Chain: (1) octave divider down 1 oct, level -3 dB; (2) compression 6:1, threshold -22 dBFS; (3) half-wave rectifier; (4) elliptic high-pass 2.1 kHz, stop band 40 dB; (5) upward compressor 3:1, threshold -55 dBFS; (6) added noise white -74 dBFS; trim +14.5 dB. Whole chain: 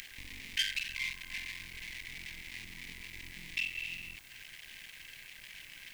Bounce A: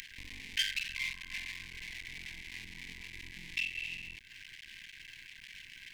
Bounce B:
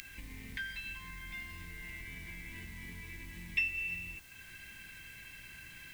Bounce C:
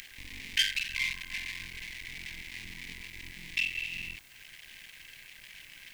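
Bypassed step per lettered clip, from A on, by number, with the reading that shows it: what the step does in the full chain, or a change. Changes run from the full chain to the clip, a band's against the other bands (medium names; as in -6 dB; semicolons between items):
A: 6, 500 Hz band -2.0 dB; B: 3, 4 kHz band -15.0 dB; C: 2, mean gain reduction 3.0 dB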